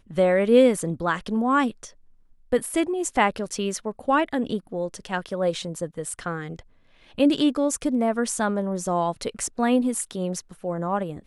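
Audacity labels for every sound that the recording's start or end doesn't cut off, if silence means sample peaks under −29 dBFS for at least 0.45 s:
2.520000	6.590000	sound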